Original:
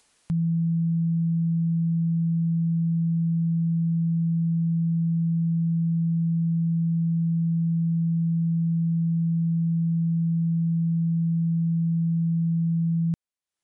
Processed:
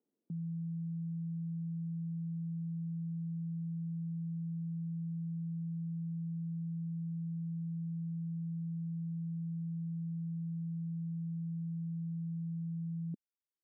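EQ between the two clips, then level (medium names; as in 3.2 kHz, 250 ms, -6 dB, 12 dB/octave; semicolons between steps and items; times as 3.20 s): Butterworth band-pass 290 Hz, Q 1.3; -7.0 dB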